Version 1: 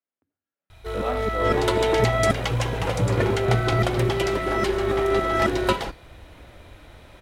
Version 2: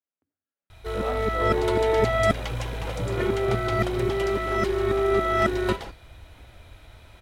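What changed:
speech -4.0 dB; second sound -8.0 dB

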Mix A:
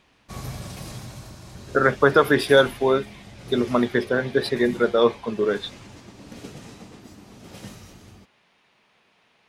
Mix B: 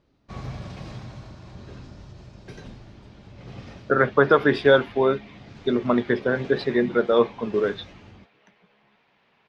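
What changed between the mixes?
speech: entry +2.15 s; master: add distance through air 180 m

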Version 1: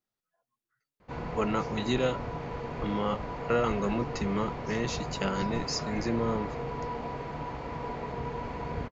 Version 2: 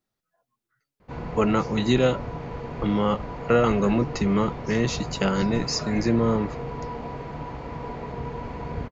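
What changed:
speech +5.5 dB; master: add bass shelf 370 Hz +4.5 dB

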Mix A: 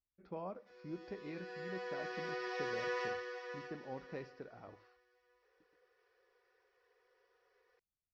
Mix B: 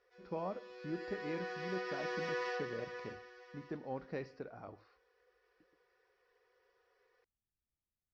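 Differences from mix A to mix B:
speech +4.0 dB; background: entry -0.55 s

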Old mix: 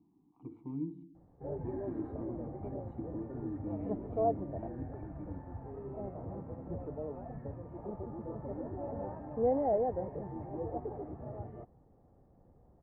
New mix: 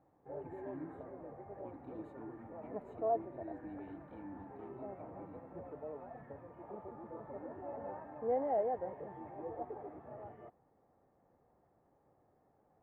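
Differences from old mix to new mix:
background: entry -1.15 s; master: add tilt EQ +4.5 dB/octave

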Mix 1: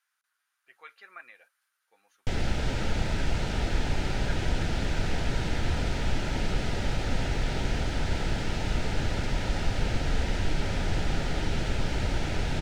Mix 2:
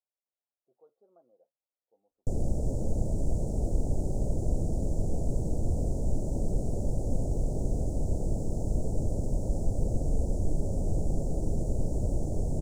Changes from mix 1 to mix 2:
speech: add low-pass 2.8 kHz 24 dB/octave; master: add elliptic band-stop 610–7500 Hz, stop band 80 dB

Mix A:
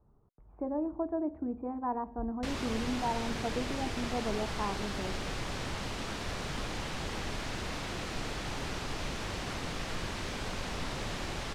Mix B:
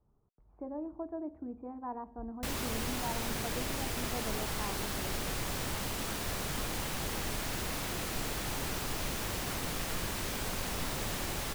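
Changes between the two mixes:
speech -6.5 dB; background: remove low-pass 5.5 kHz 12 dB/octave

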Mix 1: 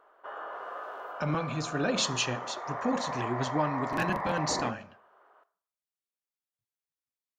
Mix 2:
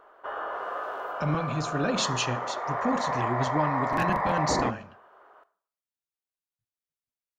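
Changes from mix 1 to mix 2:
background +6.0 dB; master: add bass shelf 150 Hz +8 dB

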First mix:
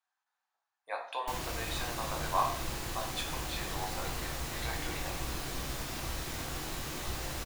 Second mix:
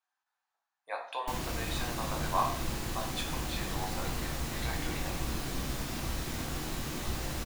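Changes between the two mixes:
background: add peaking EQ 220 Hz +6.5 dB 0.99 oct; master: add bass shelf 140 Hz +3.5 dB

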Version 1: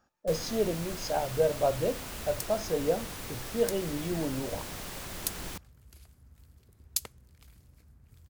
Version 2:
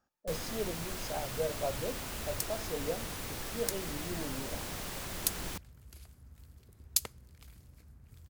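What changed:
speech -8.5 dB; second sound: send on

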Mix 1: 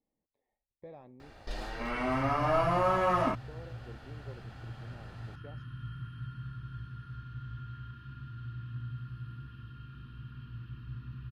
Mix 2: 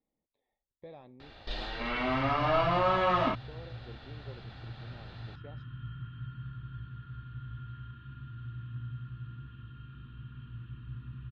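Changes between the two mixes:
second sound: add distance through air 440 m; master: add resonant low-pass 3.7 kHz, resonance Q 3.4

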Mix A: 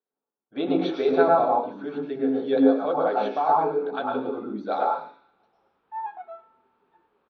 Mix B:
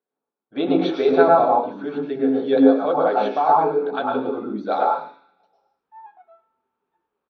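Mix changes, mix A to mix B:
speech +4.5 dB; background -10.5 dB

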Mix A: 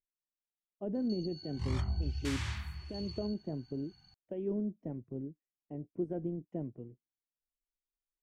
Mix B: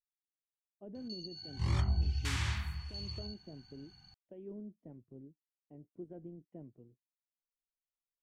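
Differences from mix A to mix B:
speech -11.5 dB; background +3.0 dB

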